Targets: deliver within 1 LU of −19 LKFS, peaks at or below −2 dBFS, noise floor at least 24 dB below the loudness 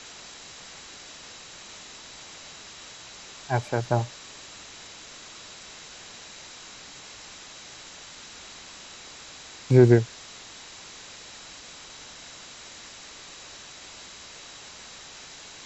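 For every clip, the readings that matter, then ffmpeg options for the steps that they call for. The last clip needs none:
interfering tone 3,900 Hz; level of the tone −53 dBFS; background noise floor −45 dBFS; target noise floor −49 dBFS; integrated loudness −24.5 LKFS; sample peak −4.0 dBFS; target loudness −19.0 LKFS
→ -af "bandreject=frequency=3900:width=30"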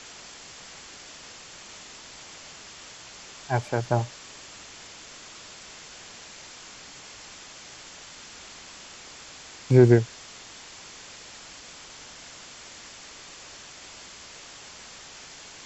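interfering tone none found; background noise floor −46 dBFS; target noise floor −47 dBFS
→ -af "afftdn=noise_reduction=6:noise_floor=-46"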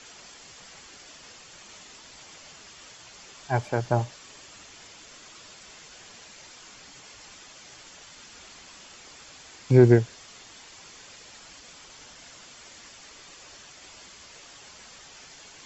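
background noise floor −49 dBFS; integrated loudness −22.5 LKFS; sample peak −4.0 dBFS; target loudness −19.0 LKFS
→ -af "volume=3.5dB,alimiter=limit=-2dB:level=0:latency=1"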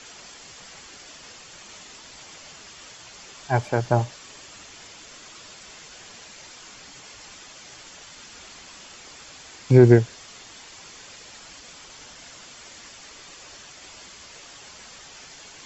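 integrated loudness −19.5 LKFS; sample peak −2.0 dBFS; background noise floor −46 dBFS

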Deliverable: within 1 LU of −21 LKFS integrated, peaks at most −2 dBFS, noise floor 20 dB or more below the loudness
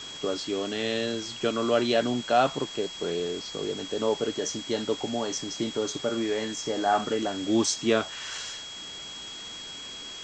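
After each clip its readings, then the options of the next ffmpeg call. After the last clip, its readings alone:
interfering tone 3,300 Hz; level of the tone −39 dBFS; background noise floor −40 dBFS; target noise floor −49 dBFS; integrated loudness −28.5 LKFS; sample peak −10.0 dBFS; target loudness −21.0 LKFS
→ -af "bandreject=frequency=3300:width=30"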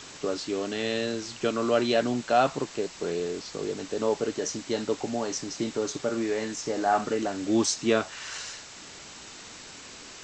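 interfering tone none found; background noise floor −45 dBFS; target noise floor −49 dBFS
→ -af "afftdn=noise_reduction=6:noise_floor=-45"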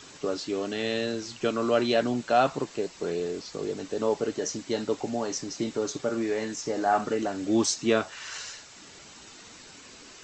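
background noise floor −49 dBFS; integrated loudness −28.5 LKFS; sample peak −10.5 dBFS; target loudness −21.0 LKFS
→ -af "volume=7.5dB"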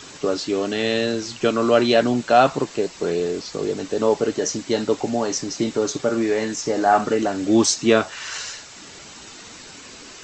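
integrated loudness −21.0 LKFS; sample peak −3.0 dBFS; background noise floor −41 dBFS

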